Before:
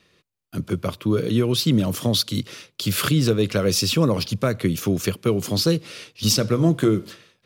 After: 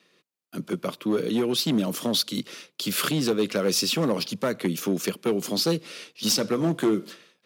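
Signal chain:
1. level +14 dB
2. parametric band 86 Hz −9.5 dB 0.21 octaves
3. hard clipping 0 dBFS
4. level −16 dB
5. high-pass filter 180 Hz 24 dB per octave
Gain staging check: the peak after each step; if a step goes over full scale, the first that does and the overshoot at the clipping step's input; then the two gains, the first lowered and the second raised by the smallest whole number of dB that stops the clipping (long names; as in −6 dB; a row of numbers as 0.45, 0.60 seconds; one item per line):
+6.5, +6.5, 0.0, −16.0, −11.0 dBFS
step 1, 6.5 dB
step 1 +7 dB, step 4 −9 dB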